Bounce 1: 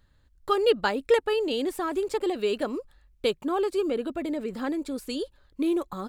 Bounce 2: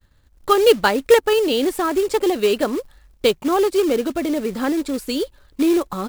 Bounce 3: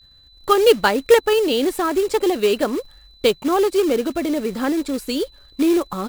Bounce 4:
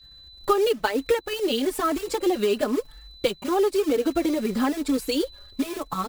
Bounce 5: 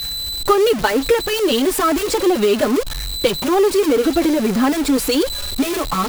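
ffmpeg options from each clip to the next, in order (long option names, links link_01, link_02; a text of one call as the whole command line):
ffmpeg -i in.wav -af "acrusher=bits=4:mode=log:mix=0:aa=0.000001,agate=range=-33dB:threshold=-58dB:ratio=3:detection=peak,volume=8.5dB" out.wav
ffmpeg -i in.wav -af "aeval=exprs='val(0)+0.00355*sin(2*PI*4000*n/s)':channel_layout=same" out.wav
ffmpeg -i in.wav -filter_complex "[0:a]acompressor=threshold=-20dB:ratio=10,asplit=2[link_01][link_02];[link_02]adelay=4,afreqshift=1[link_03];[link_01][link_03]amix=inputs=2:normalize=1,volume=3.5dB" out.wav
ffmpeg -i in.wav -af "aeval=exprs='val(0)+0.5*0.0562*sgn(val(0))':channel_layout=same,volume=5dB" out.wav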